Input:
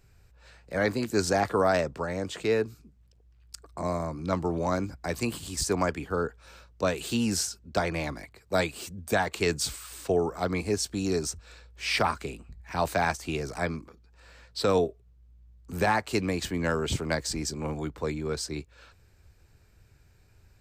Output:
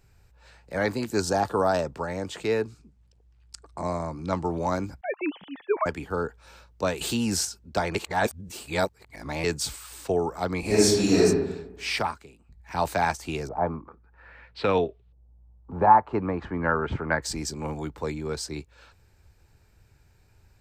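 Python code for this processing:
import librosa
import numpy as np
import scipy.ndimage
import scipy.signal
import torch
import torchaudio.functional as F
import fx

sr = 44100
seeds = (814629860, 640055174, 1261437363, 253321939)

y = fx.peak_eq(x, sr, hz=2100.0, db=-13.0, octaves=0.37, at=(1.2, 1.85))
y = fx.lowpass(y, sr, hz=10000.0, slope=24, at=(2.67, 4.49))
y = fx.sine_speech(y, sr, at=(5.01, 5.86))
y = fx.env_flatten(y, sr, amount_pct=50, at=(7.01, 7.45))
y = fx.reverb_throw(y, sr, start_s=10.6, length_s=0.62, rt60_s=1.0, drr_db=-10.0)
y = fx.filter_lfo_lowpass(y, sr, shape='saw_up', hz=fx.line((13.47, 0.82), (17.22, 0.15)), low_hz=640.0, high_hz=3700.0, q=2.4, at=(13.47, 17.22), fade=0.02)
y = fx.edit(y, sr, fx.reverse_span(start_s=7.95, length_s=1.49),
    fx.fade_down_up(start_s=11.88, length_s=0.89, db=-14.0, fade_s=0.38), tone=tone)
y = fx.peak_eq(y, sr, hz=870.0, db=6.0, octaves=0.23)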